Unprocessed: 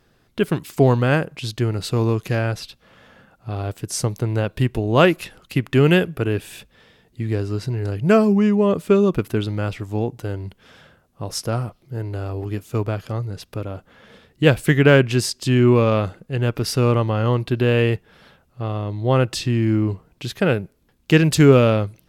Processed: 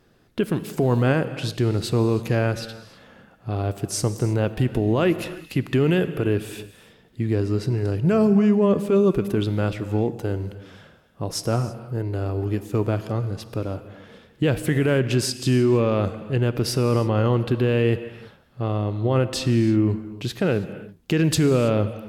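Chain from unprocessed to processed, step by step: peaking EQ 300 Hz +4.5 dB 2.2 oct; peak limiter -10 dBFS, peak gain reduction 12 dB; gated-style reverb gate 350 ms flat, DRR 11.5 dB; trim -1.5 dB

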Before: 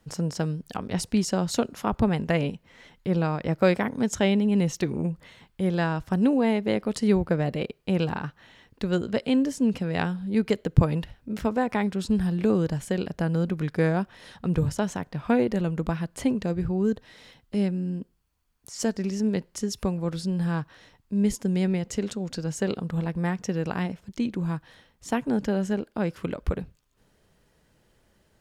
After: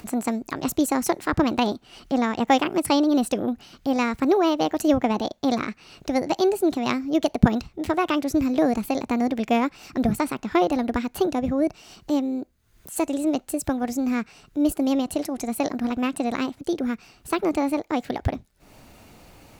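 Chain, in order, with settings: upward compressor, threshold -39 dBFS; wide varispeed 1.45×; trim +2.5 dB

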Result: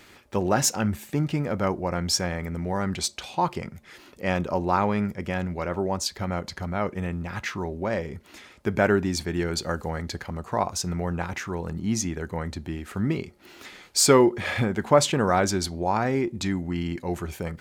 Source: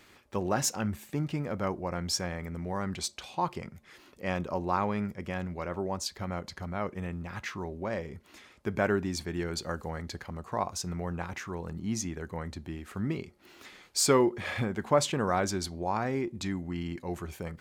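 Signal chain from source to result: band-stop 1.1 kHz, Q 18; trim +6.5 dB

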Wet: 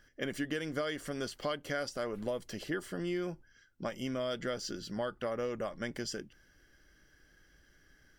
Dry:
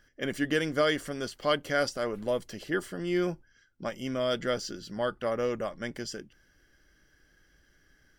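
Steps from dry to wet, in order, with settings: compression 6:1, threshold -32 dBFS, peak gain reduction 11 dB

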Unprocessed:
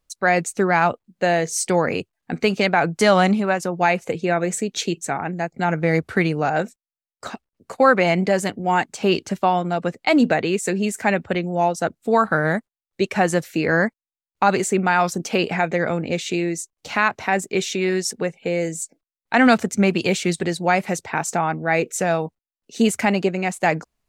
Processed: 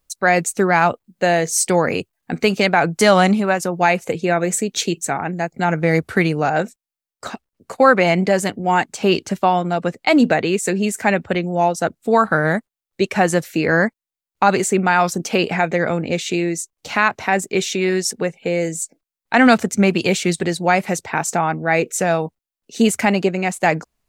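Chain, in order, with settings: treble shelf 9.8 kHz +9.5 dB, from 6.47 s +3.5 dB; trim +2.5 dB

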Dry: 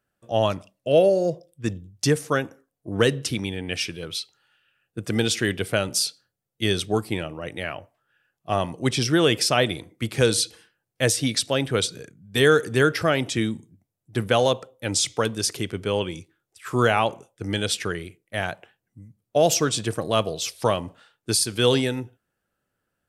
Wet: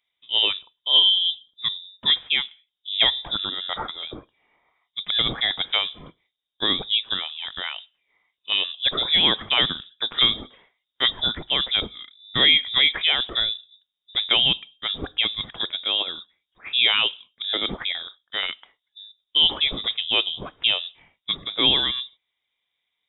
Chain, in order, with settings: frequency inversion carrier 3.7 kHz

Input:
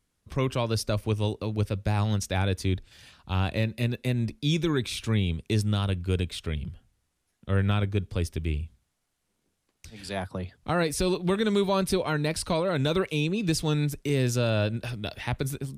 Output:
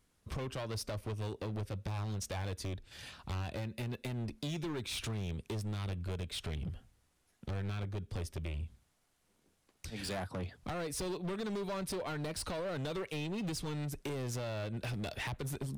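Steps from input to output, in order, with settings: peaking EQ 690 Hz +2.5 dB 2.6 oct; compression 8:1, threshold -33 dBFS, peak gain reduction 14.5 dB; hard clipper -36 dBFS, distortion -9 dB; trim +1.5 dB

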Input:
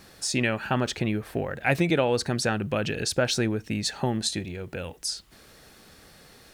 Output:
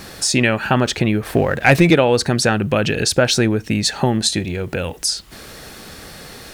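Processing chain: 1.23–1.95 s: waveshaping leveller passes 1; in parallel at +3 dB: compression, threshold -39 dBFS, peak gain reduction 20.5 dB; on the sum: trim +7.5 dB

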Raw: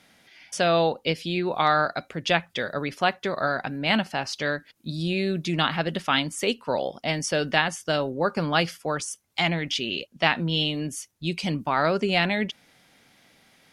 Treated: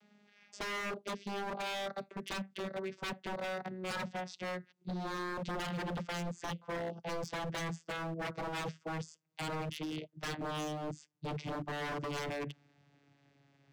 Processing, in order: vocoder on a note that slides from G#3, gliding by -7 st; dynamic bell 1 kHz, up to -3 dB, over -44 dBFS, Q 2; wavefolder -29 dBFS; trim -4 dB

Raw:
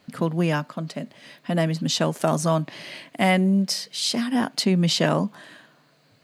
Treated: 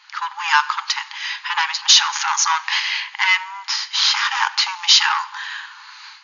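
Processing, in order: 3.64–4.88 s: dead-time distortion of 0.07 ms; level rider gain up to 16 dB; in parallel at -3 dB: peak limiter -8.5 dBFS, peak gain reduction 7.5 dB; 1.82–2.80 s: on the sum: transient shaper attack -3 dB, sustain +6 dB; saturation -11.5 dBFS, distortion -11 dB; brick-wall FIR band-pass 800–7000 Hz; on a send at -14.5 dB: reverberation RT60 1.1 s, pre-delay 3 ms; on the sum: trim +7 dB

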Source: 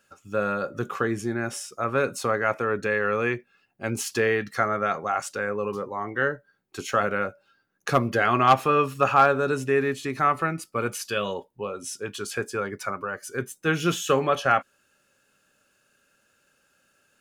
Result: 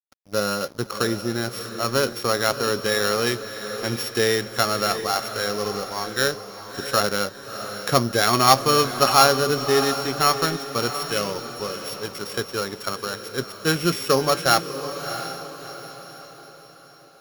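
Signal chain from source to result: sorted samples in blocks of 8 samples; crossover distortion -42 dBFS; echo that smears into a reverb 668 ms, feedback 44%, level -10 dB; trim +3 dB

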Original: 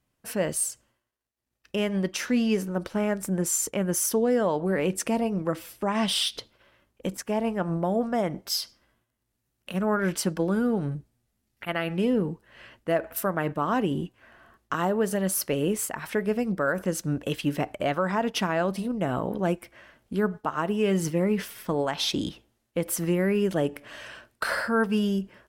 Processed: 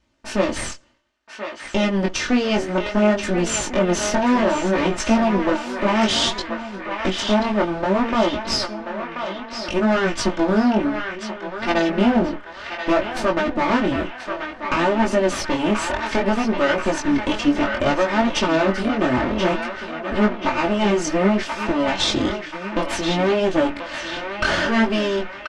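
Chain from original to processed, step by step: comb filter that takes the minimum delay 3.3 ms; in parallel at +1 dB: compression, threshold -34 dBFS, peak gain reduction 12.5 dB; on the sum: low-pass 6.6 kHz 24 dB/octave; on a send: band-passed feedback delay 1033 ms, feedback 62%, band-pass 1.8 kHz, level -4 dB; on the sum: chorus 0.6 Hz, delay 17.5 ms, depth 6.7 ms; echo from a far wall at 240 m, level -14 dB; trim +8.5 dB

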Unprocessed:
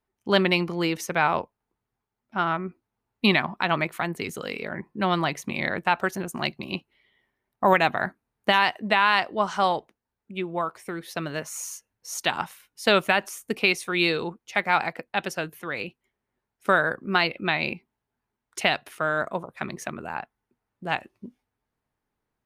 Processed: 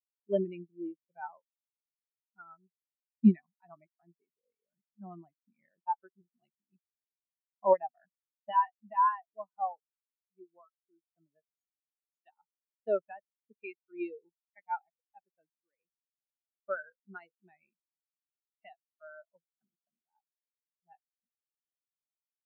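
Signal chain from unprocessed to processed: high-pass 100 Hz 12 dB/octave; spectral contrast expander 4:1; trim -6.5 dB

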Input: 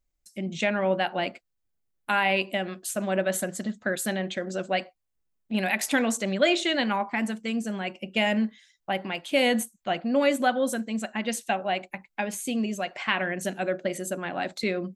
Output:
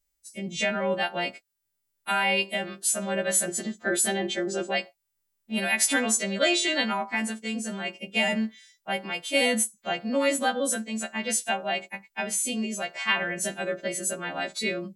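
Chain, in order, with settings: partials quantised in pitch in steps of 2 st; 3.47–4.71 s: small resonant body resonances 360/750/3200 Hz, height 13 dB, ringing for 65 ms; trim -2 dB

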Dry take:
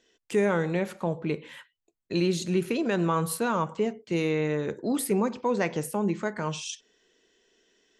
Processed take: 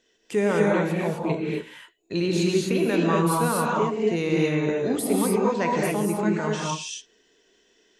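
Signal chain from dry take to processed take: gated-style reverb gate 280 ms rising, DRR -2.5 dB

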